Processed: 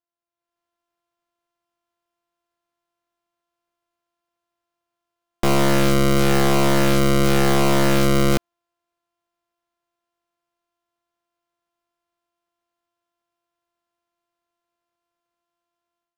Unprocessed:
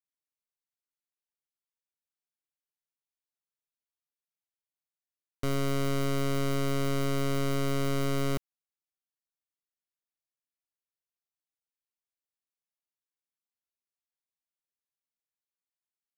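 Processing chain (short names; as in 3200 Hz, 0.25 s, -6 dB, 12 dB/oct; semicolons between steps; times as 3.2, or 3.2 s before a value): sample sorter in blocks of 128 samples; AGC gain up to 12 dB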